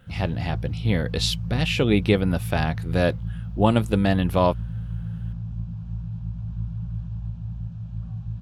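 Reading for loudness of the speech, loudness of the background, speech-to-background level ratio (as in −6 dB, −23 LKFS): −23.5 LKFS, −32.0 LKFS, 8.5 dB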